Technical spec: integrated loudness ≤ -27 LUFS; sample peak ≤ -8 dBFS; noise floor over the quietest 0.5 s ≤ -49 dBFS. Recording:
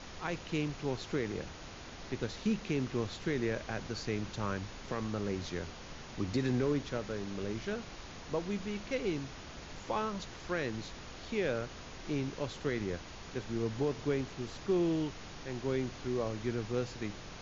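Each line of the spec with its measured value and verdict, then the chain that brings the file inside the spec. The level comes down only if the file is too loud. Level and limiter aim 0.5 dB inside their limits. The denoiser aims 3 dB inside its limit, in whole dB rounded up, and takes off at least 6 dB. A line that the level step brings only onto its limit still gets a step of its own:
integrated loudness -36.5 LUFS: pass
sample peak -21.0 dBFS: pass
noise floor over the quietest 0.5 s -47 dBFS: fail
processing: noise reduction 6 dB, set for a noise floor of -47 dBFS

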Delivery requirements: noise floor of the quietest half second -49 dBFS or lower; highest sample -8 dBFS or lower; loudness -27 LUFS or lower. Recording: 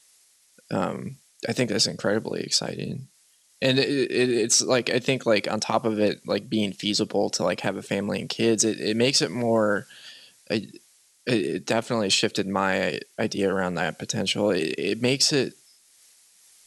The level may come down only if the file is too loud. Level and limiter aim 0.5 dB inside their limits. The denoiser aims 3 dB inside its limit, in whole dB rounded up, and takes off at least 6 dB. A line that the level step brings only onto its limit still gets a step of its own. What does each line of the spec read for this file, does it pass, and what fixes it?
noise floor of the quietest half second -61 dBFS: pass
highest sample -6.5 dBFS: fail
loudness -24.5 LUFS: fail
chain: trim -3 dB

